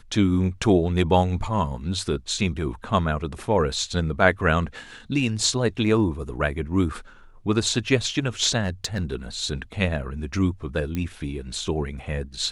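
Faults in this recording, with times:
0:08.63–0:09.15: clipping −19.5 dBFS
0:10.95: click −15 dBFS

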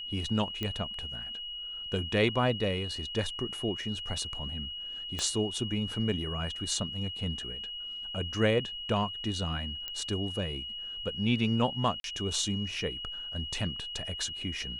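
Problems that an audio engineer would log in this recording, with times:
whistle 2,900 Hz −37 dBFS
0:00.63: click −19 dBFS
0:05.19: click −18 dBFS
0:09.88: click −21 dBFS
0:12.00–0:12.04: drop-out 42 ms

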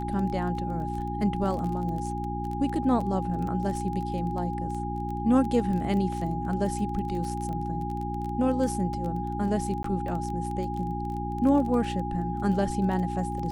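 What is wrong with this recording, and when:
surface crackle 18 per second −32 dBFS
mains hum 60 Hz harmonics 6 −33 dBFS
whistle 820 Hz −33 dBFS
0:09.83–0:09.84: drop-out

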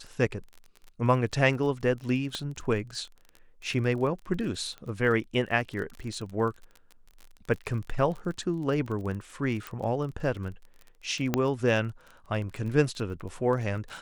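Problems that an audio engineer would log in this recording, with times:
surface crackle 30 per second −36 dBFS
0:02.35: click −19 dBFS
0:04.78: click −29 dBFS
0:09.67: click
0:11.34: click −10 dBFS

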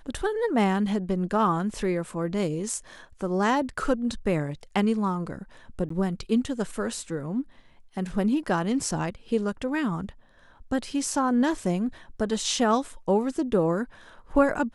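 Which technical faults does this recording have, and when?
0:05.89–0:05.90: drop-out 14 ms

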